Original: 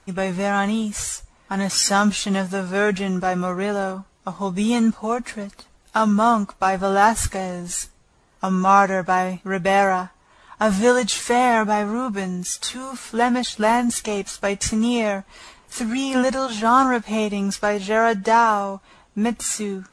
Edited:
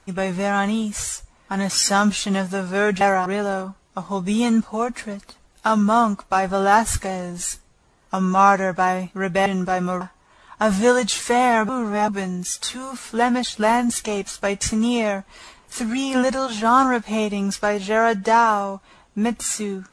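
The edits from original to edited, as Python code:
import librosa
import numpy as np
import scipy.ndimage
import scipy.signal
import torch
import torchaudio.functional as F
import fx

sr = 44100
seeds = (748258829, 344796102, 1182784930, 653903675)

y = fx.edit(x, sr, fx.swap(start_s=3.01, length_s=0.55, other_s=9.76, other_length_s=0.25),
    fx.reverse_span(start_s=11.69, length_s=0.39), tone=tone)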